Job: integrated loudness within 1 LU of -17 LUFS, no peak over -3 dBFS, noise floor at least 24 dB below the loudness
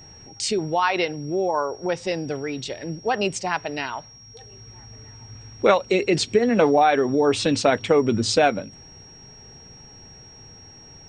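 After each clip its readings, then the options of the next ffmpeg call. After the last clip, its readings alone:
steady tone 5.6 kHz; tone level -45 dBFS; loudness -22.0 LUFS; peak level -3.0 dBFS; loudness target -17.0 LUFS
-> -af "bandreject=f=5600:w=30"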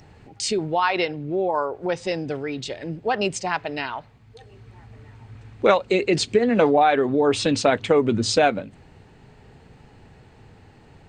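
steady tone not found; loudness -22.0 LUFS; peak level -3.0 dBFS; loudness target -17.0 LUFS
-> -af "volume=1.78,alimiter=limit=0.708:level=0:latency=1"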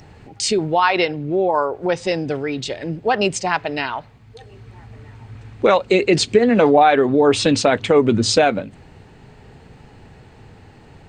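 loudness -17.5 LUFS; peak level -3.0 dBFS; noise floor -46 dBFS

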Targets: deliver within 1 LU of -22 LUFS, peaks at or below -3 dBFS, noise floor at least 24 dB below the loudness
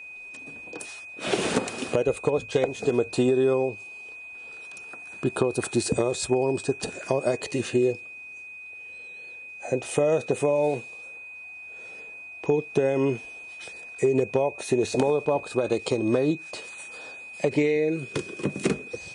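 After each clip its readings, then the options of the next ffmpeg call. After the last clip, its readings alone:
steady tone 2.5 kHz; tone level -39 dBFS; loudness -26.0 LUFS; peak level -8.0 dBFS; loudness target -22.0 LUFS
-> -af "bandreject=f=2500:w=30"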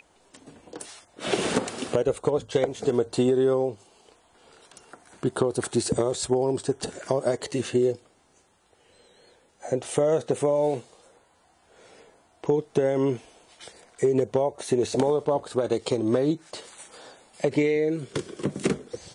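steady tone not found; loudness -26.0 LUFS; peak level -8.0 dBFS; loudness target -22.0 LUFS
-> -af "volume=1.58"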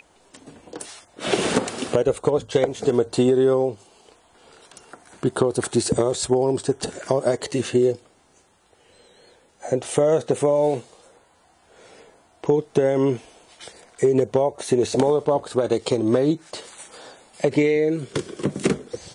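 loudness -22.0 LUFS; peak level -4.0 dBFS; noise floor -58 dBFS

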